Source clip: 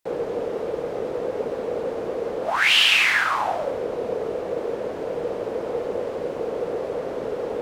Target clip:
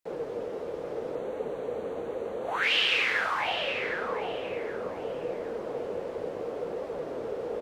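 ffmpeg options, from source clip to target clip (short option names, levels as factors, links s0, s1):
-filter_complex "[0:a]acrossover=split=5100[s0][s1];[s1]acompressor=threshold=0.00562:ratio=4:attack=1:release=60[s2];[s0][s2]amix=inputs=2:normalize=0,asplit=2[s3][s4];[s4]adelay=763,lowpass=f=2900:p=1,volume=0.562,asplit=2[s5][s6];[s6]adelay=763,lowpass=f=2900:p=1,volume=0.36,asplit=2[s7][s8];[s8]adelay=763,lowpass=f=2900:p=1,volume=0.36,asplit=2[s9][s10];[s10]adelay=763,lowpass=f=2900:p=1,volume=0.36[s11];[s3][s5][s7][s9][s11]amix=inputs=5:normalize=0,flanger=delay=3.5:depth=9.5:regen=-43:speed=0.73:shape=triangular,asettb=1/sr,asplit=3[s12][s13][s14];[s12]atrim=end=1.154[s15];[s13]atrim=start=1.15:end=2.63,asetpts=PTS-STARTPTS,afade=t=in:d=0.004:c=qsin,afade=t=out:st=1.476:d=0.004:c=qsin,asuperstop=centerf=5100:order=4:qfactor=3.6[s16];[s14]atrim=start=2.626[s17];[s15][s16]acrossfade=d=0.004:c1=hsin:c2=qsin[s18];[s18][s17]acrossfade=d=0.004:c1=qsin:c2=hsin,volume=0.631"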